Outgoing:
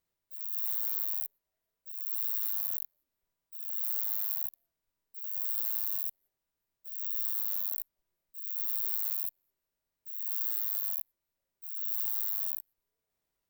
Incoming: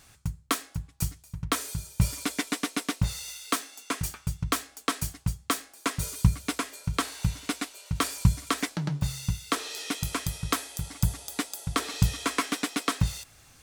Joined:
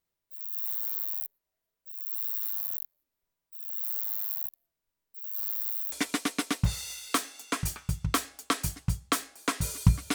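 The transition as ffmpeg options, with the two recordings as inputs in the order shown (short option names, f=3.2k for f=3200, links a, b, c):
-filter_complex "[0:a]apad=whole_dur=10.14,atrim=end=10.14,asplit=2[a][b];[a]atrim=end=5.352[c];[b]atrim=start=5.348:end=5.922,asetpts=PTS-STARTPTS,areverse[d];[1:a]atrim=start=2.298:end=6.52[e];[c][d]acrossfade=d=0.004:c1=hsin:c2=hsin[f];[f][e]acrossfade=d=0.004:c1=hsin:c2=hsin"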